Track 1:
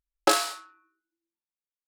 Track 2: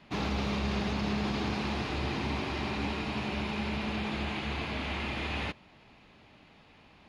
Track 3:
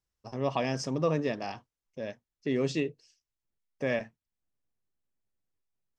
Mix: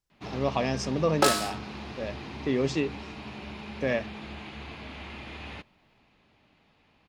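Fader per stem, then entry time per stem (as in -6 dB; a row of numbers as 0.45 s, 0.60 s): -1.0 dB, -7.0 dB, +2.0 dB; 0.95 s, 0.10 s, 0.00 s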